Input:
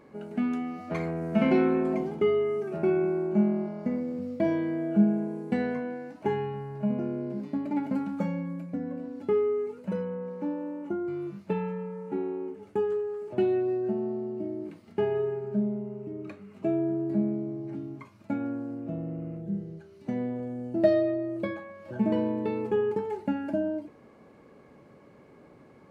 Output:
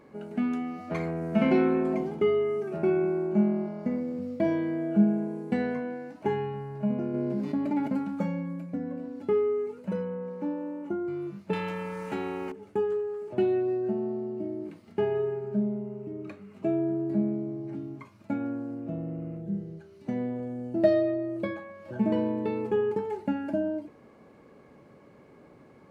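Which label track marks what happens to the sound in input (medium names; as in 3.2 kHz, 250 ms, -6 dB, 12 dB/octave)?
7.140000	7.880000	level flattener amount 50%
11.530000	12.520000	spectrum-flattening compressor 2:1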